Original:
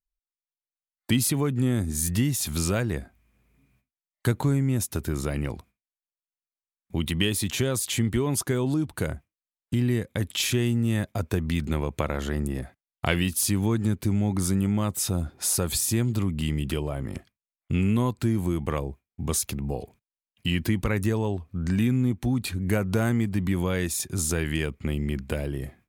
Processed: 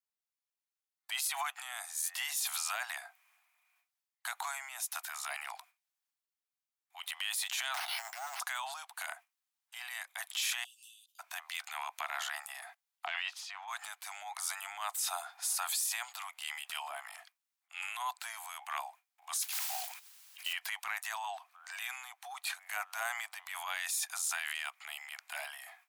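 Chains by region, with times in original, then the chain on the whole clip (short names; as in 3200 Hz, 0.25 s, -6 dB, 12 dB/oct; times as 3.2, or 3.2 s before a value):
7.74–8.4 minimum comb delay 1.4 ms + careless resampling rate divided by 6×, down filtered, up hold + negative-ratio compressor -31 dBFS, ratio -0.5
10.64–11.19 steep high-pass 2800 Hz 96 dB/oct + compressor 16:1, threshold -54 dBFS + ensemble effect
13.06–13.68 air absorption 200 m + three-band expander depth 100%
19.4–20.53 modulation noise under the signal 18 dB + tilt shelf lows -8 dB, about 820 Hz + upward compressor, threshold -32 dBFS
whole clip: steep high-pass 700 Hz 96 dB/oct; transient shaper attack -8 dB, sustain +6 dB; limiter -24 dBFS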